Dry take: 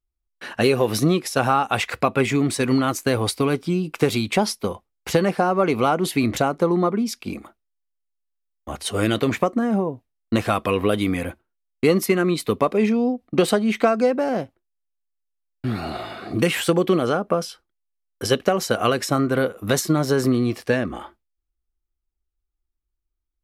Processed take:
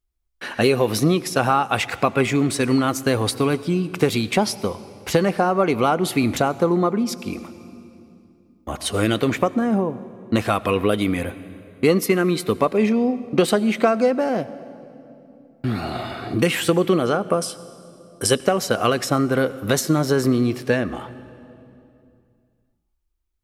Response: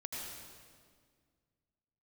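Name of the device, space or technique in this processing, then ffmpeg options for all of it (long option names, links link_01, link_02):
ducked reverb: -filter_complex "[0:a]asettb=1/sr,asplit=3[link_01][link_02][link_03];[link_01]atrim=end=17.214[link_04];[link_02]atrim=start=17.21:end=18.4,asetpts=PTS-STARTPTS,afade=type=in:duration=0.004:curve=qsin,afade=type=out:start_time=1.186:duration=0.004:curve=qsin,equalizer=frequency=8900:width_type=o:width=0.49:gain=14[link_05];[link_03]atrim=start=18.396[link_06];[link_04][link_05]acrossfade=duration=0.004:curve1=hsin:curve2=qsin[link_07];[link_07][link_06]acrossfade=duration=0.004:curve1=qsin:curve2=hsin,asplit=3[link_08][link_09][link_10];[1:a]atrim=start_sample=2205[link_11];[link_09][link_11]afir=irnorm=-1:irlink=0[link_12];[link_10]apad=whole_len=1033521[link_13];[link_12][link_13]sidechaincompress=threshold=-29dB:ratio=10:attack=16:release=1360,volume=-0.5dB[link_14];[link_08][link_14]amix=inputs=2:normalize=0"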